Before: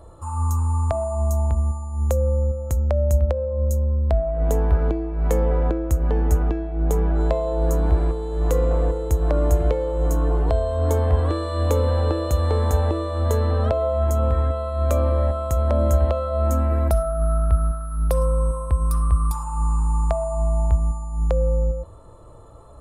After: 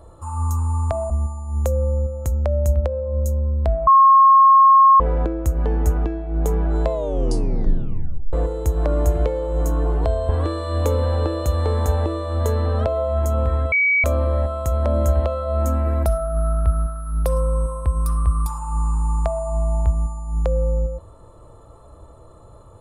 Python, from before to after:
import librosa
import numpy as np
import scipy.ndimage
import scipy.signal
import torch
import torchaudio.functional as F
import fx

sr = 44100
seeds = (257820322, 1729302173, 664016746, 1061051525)

y = fx.edit(x, sr, fx.cut(start_s=1.1, length_s=0.45),
    fx.bleep(start_s=4.32, length_s=1.13, hz=1080.0, db=-7.5),
    fx.tape_stop(start_s=7.37, length_s=1.41),
    fx.cut(start_s=10.74, length_s=0.4),
    fx.bleep(start_s=14.57, length_s=0.32, hz=2270.0, db=-14.0), tone=tone)